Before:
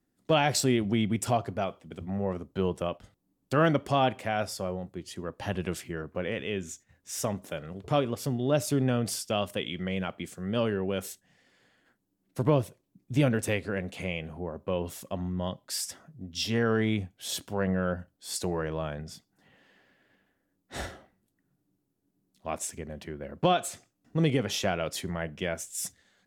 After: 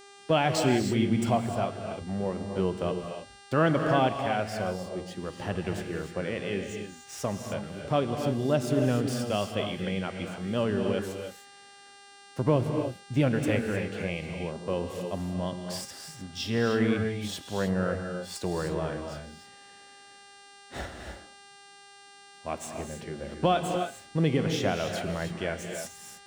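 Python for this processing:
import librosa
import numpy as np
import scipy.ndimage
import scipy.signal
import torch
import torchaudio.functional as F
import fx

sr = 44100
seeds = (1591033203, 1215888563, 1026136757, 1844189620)

y = scipy.ndimage.median_filter(x, 3, mode='constant')
y = fx.high_shelf(y, sr, hz=4300.0, db=-6.5)
y = fx.dmg_buzz(y, sr, base_hz=400.0, harmonics=24, level_db=-51.0, tilt_db=-4, odd_only=False)
y = fx.rev_gated(y, sr, seeds[0], gate_ms=330, shape='rising', drr_db=4.5)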